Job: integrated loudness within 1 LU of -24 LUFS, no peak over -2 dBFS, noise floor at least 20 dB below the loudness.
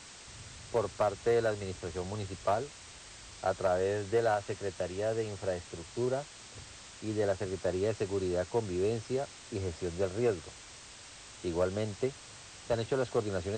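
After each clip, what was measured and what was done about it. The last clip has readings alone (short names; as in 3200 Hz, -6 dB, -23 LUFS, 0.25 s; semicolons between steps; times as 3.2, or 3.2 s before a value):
clipped 0.3%; flat tops at -21.0 dBFS; noise floor -51 dBFS; noise floor target -54 dBFS; loudness -33.5 LUFS; peak -21.0 dBFS; loudness target -24.0 LUFS
-> clip repair -21 dBFS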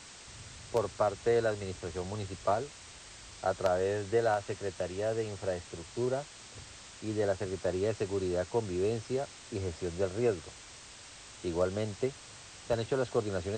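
clipped 0.0%; noise floor -51 dBFS; noise floor target -54 dBFS
-> denoiser 6 dB, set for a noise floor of -51 dBFS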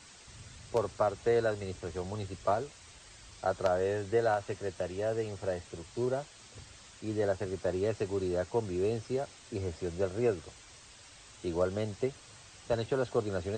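noise floor -54 dBFS; loudness -33.5 LUFS; peak -12.5 dBFS; loudness target -24.0 LUFS
-> gain +9.5 dB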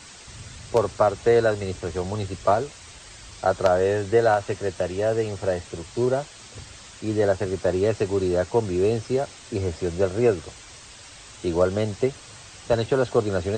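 loudness -24.0 LUFS; peak -3.0 dBFS; noise floor -45 dBFS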